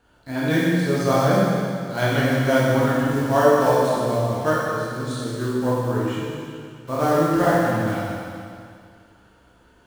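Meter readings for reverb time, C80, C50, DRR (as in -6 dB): 2.3 s, -1.5 dB, -4.0 dB, -8.0 dB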